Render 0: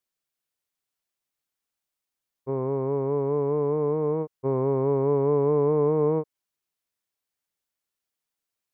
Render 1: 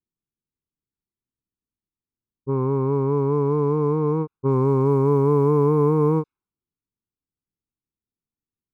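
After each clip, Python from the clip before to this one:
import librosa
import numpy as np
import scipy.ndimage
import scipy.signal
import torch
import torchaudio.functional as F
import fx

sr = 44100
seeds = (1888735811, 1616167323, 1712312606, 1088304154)

y = x + 0.99 * np.pad(x, (int(0.8 * sr / 1000.0), 0))[:len(x)]
y = fx.quant_float(y, sr, bits=6)
y = fx.env_lowpass(y, sr, base_hz=380.0, full_db=-17.0)
y = y * librosa.db_to_amplitude(3.0)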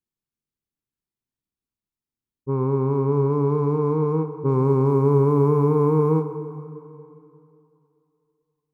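y = fx.rev_plate(x, sr, seeds[0], rt60_s=2.8, hf_ratio=0.7, predelay_ms=0, drr_db=8.5)
y = y * librosa.db_to_amplitude(-1.0)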